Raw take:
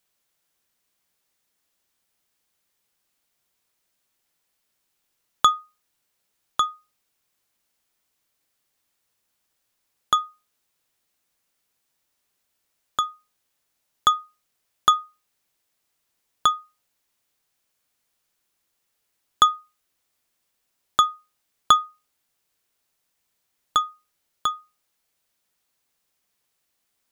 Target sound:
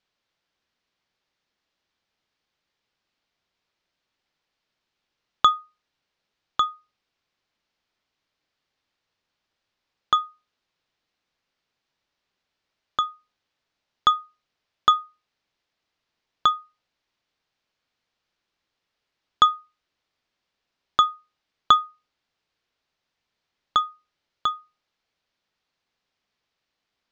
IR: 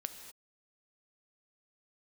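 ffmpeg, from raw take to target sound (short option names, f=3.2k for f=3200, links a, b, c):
-af "lowpass=f=5k:w=0.5412,lowpass=f=5k:w=1.3066"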